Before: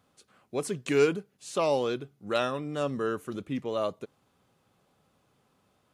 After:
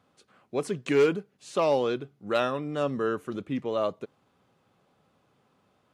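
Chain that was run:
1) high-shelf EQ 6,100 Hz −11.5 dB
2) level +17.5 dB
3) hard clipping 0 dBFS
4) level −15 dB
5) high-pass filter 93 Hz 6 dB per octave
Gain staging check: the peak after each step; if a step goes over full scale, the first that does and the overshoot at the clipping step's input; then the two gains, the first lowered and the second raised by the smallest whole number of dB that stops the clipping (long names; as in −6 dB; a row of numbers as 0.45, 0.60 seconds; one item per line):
−11.0, +6.5, 0.0, −15.0, −13.5 dBFS
step 2, 6.5 dB
step 2 +10.5 dB, step 4 −8 dB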